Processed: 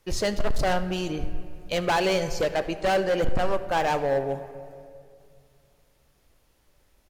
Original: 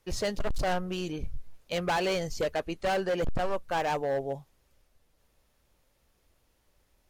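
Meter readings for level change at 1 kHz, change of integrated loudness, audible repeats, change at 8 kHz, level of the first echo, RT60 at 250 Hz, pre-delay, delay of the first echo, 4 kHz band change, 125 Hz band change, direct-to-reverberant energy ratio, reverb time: +5.0 dB, +5.0 dB, 1, +4.5 dB, -21.0 dB, 2.6 s, 3 ms, 75 ms, +5.0 dB, +4.5 dB, 10.0 dB, 2.3 s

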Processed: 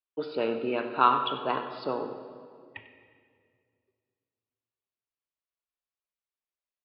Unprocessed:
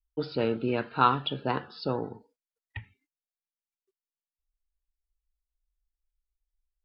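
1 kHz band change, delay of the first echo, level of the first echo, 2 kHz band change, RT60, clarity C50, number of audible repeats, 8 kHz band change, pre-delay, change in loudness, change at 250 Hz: +2.0 dB, 96 ms, -14.0 dB, 0.0 dB, 2.1 s, 7.5 dB, 1, n/a, 24 ms, +0.5 dB, -3.0 dB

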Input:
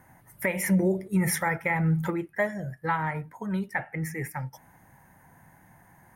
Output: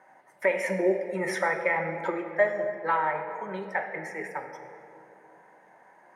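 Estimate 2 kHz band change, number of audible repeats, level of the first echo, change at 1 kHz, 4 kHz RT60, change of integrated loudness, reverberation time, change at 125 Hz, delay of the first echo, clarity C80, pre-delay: +1.0 dB, none, none, +2.5 dB, 1.4 s, -0.5 dB, 2.8 s, -15.0 dB, none, 7.5 dB, 3 ms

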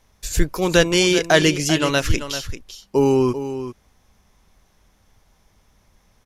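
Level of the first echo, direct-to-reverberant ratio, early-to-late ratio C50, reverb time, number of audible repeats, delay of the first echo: -11.0 dB, none, none, none, 1, 0.39 s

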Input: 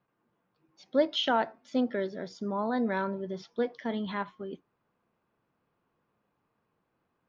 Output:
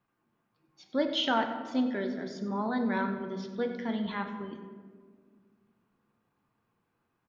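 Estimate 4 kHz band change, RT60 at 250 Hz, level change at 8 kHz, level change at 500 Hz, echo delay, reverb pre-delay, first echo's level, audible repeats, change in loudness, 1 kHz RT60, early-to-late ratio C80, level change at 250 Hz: +0.5 dB, 2.5 s, n/a, -3.0 dB, 95 ms, 3 ms, -14.0 dB, 1, -0.5 dB, 1.4 s, 8.5 dB, +1.0 dB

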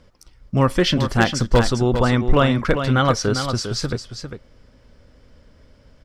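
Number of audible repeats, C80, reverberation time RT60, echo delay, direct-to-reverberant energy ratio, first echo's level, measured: 1, none, none, 0.401 s, none, -8.0 dB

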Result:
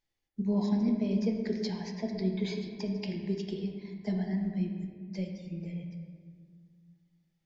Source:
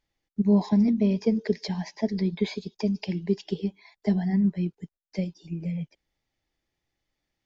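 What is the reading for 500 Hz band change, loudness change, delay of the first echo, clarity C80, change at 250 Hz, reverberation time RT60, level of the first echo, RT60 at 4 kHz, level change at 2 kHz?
-6.0 dB, -6.0 dB, none, 6.0 dB, -6.0 dB, 1.9 s, none, 1.1 s, -5.0 dB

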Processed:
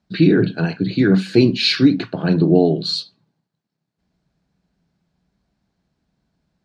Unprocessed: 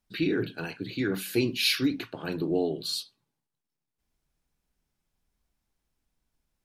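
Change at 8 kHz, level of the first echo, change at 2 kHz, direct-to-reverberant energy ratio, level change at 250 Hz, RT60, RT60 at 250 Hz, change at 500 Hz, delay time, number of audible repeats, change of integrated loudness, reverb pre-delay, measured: n/a, none, +7.5 dB, none, +14.5 dB, none, none, +12.0 dB, none, none, +12.5 dB, none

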